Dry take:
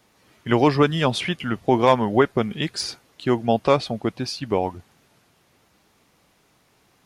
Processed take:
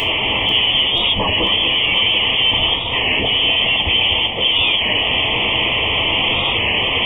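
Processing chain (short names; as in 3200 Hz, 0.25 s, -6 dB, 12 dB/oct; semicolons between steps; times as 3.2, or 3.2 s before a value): infinite clipping; low shelf 200 Hz -3 dB; inverted band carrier 3300 Hz; short-mantissa float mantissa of 8-bit; Butterworth band-stop 1500 Hz, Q 1.4; on a send: echo with dull and thin repeats by turns 0.245 s, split 2300 Hz, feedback 81%, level -7.5 dB; on the sum: non-linear reverb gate 0.12 s falling, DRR 4 dB; record warp 33 1/3 rpm, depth 100 cents; gain +7.5 dB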